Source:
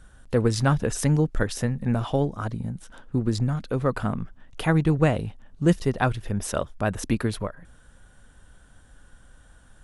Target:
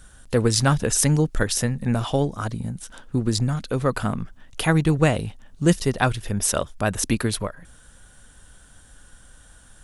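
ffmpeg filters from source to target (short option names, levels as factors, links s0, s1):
-af "highshelf=f=3200:g=11,volume=1.19"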